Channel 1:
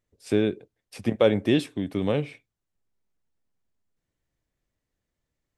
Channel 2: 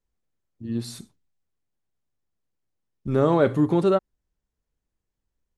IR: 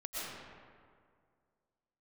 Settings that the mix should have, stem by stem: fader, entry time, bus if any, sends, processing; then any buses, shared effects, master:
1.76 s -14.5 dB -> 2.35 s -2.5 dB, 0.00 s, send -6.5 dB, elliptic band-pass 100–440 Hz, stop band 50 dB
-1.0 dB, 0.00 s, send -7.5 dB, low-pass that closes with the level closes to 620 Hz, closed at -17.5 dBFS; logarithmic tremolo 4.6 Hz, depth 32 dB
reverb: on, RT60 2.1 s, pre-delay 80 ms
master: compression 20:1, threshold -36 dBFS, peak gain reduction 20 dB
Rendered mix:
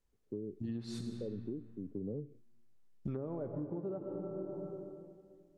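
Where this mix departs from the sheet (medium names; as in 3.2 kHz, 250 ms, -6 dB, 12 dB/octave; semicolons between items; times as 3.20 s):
stem 1: send off; stem 2: missing logarithmic tremolo 4.6 Hz, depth 32 dB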